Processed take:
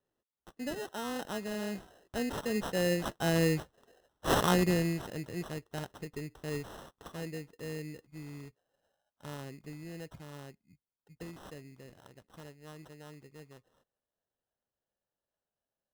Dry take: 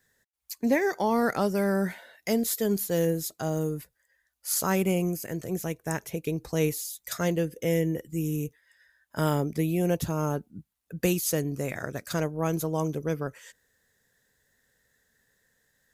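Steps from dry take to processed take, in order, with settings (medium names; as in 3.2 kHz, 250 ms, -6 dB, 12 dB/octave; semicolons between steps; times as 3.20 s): Doppler pass-by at 3.84 s, 20 m/s, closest 6.7 m; sample-rate reducer 2.3 kHz, jitter 0%; trim +6 dB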